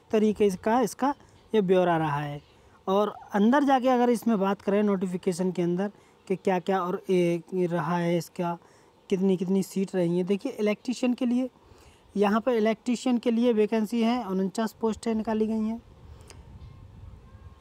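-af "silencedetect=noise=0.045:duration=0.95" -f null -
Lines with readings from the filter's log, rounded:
silence_start: 16.30
silence_end: 17.61 | silence_duration: 1.30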